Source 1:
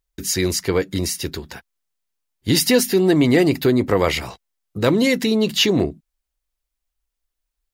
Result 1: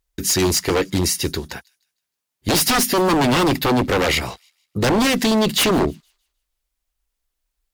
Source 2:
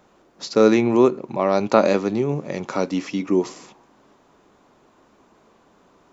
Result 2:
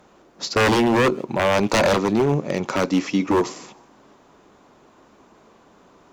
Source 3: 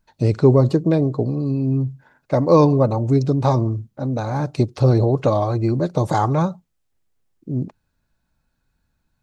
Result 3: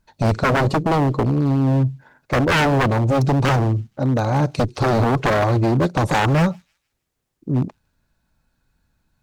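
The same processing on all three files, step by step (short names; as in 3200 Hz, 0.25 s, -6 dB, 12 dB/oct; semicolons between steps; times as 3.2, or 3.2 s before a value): wavefolder -16 dBFS; added harmonics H 7 -37 dB, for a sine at -16 dBFS; thin delay 0.156 s, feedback 32%, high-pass 3400 Hz, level -22.5 dB; gain +4.5 dB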